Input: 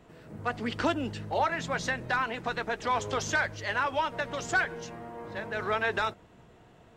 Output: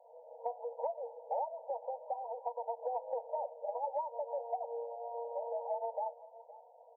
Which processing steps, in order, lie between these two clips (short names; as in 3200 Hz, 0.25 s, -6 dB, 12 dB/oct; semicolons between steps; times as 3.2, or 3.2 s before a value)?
FFT band-pass 460–970 Hz; 1.7–2.77 tilt +4.5 dB/oct; compressor 6:1, threshold -36 dBFS, peak gain reduction 12.5 dB; echo 0.517 s -18.5 dB; gain +2.5 dB